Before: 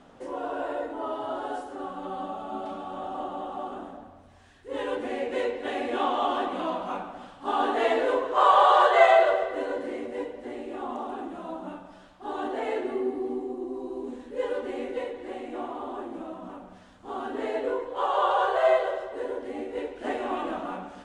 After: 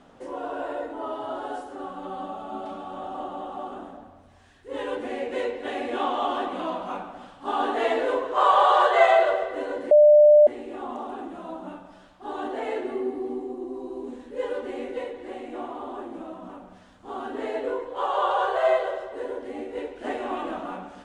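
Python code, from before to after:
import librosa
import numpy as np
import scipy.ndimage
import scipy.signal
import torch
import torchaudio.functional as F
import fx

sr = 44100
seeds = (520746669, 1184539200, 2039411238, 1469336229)

y = fx.edit(x, sr, fx.bleep(start_s=9.91, length_s=0.56, hz=597.0, db=-10.0), tone=tone)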